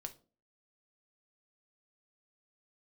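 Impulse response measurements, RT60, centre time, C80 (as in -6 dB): 0.40 s, 6 ms, 23.0 dB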